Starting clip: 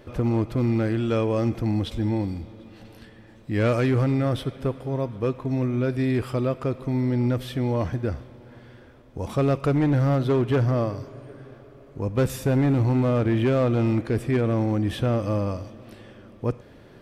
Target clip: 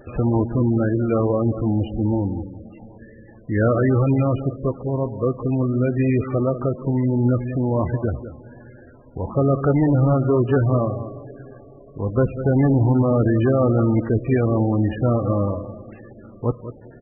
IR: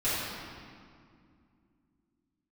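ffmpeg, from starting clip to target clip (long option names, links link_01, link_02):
-filter_complex "[0:a]asplit=3[link_01][link_02][link_03];[link_01]afade=type=out:start_time=10.69:duration=0.02[link_04];[link_02]bandreject=frequency=60:width_type=h:width=6,bandreject=frequency=120:width_type=h:width=6,bandreject=frequency=180:width_type=h:width=6,bandreject=frequency=240:width_type=h:width=6,bandreject=frequency=300:width_type=h:width=6,bandreject=frequency=360:width_type=h:width=6,bandreject=frequency=420:width_type=h:width=6,bandreject=frequency=480:width_type=h:width=6,bandreject=frequency=540:width_type=h:width=6,bandreject=frequency=600:width_type=h:width=6,afade=type=in:start_time=10.69:duration=0.02,afade=type=out:start_time=12.13:duration=0.02[link_05];[link_03]afade=type=in:start_time=12.13:duration=0.02[link_06];[link_04][link_05][link_06]amix=inputs=3:normalize=0,asplit=2[link_07][link_08];[link_08]adelay=195,lowpass=frequency=3800:poles=1,volume=-12dB,asplit=2[link_09][link_10];[link_10]adelay=195,lowpass=frequency=3800:poles=1,volume=0.21,asplit=2[link_11][link_12];[link_12]adelay=195,lowpass=frequency=3800:poles=1,volume=0.21[link_13];[link_07][link_09][link_11][link_13]amix=inputs=4:normalize=0,volume=4dB" -ar 24000 -c:a libmp3lame -b:a 8k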